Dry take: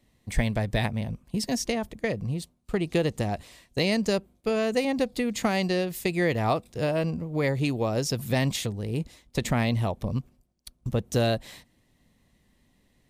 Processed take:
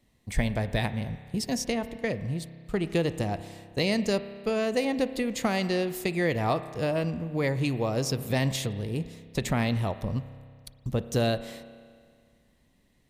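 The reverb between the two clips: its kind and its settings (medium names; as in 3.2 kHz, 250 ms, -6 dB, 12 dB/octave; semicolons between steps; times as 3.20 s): spring tank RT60 2 s, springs 30 ms, chirp 30 ms, DRR 12 dB; trim -1.5 dB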